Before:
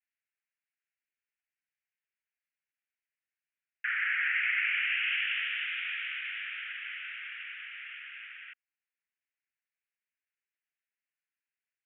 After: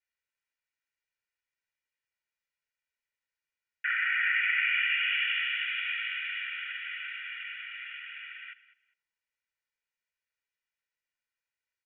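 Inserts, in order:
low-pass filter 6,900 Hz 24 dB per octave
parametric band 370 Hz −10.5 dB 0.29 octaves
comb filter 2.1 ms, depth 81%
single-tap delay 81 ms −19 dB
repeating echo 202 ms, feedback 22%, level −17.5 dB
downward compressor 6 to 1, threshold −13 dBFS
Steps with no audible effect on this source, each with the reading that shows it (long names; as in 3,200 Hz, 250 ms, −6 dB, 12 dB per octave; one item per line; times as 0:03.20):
low-pass filter 6,900 Hz: nothing at its input above 3,600 Hz
parametric band 370 Hz: nothing at its input below 1,100 Hz
downward compressor, threshold −13 dBFS: peak of its input −15.5 dBFS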